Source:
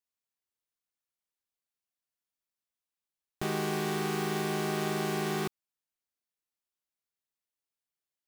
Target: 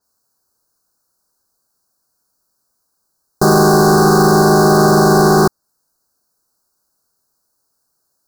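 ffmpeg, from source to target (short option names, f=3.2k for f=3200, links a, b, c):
-af "apsyclip=28.5dB,asuperstop=centerf=2600:order=12:qfactor=0.97,adynamicequalizer=threshold=0.0316:dfrequency=5600:dqfactor=0.7:tfrequency=5600:tqfactor=0.7:attack=5:release=100:ratio=0.375:range=2:mode=cutabove:tftype=highshelf,volume=-4.5dB"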